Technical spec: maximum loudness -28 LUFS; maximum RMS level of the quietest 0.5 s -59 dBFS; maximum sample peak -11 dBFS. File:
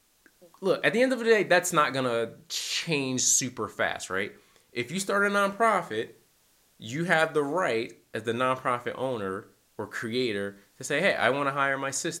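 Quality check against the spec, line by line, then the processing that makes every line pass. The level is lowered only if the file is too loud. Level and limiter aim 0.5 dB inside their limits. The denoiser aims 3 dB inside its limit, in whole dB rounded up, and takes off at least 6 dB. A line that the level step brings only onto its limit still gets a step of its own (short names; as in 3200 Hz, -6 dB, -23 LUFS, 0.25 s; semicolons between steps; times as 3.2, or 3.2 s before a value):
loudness -26.5 LUFS: fail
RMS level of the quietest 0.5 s -65 dBFS: OK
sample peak -7.0 dBFS: fail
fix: gain -2 dB; limiter -11.5 dBFS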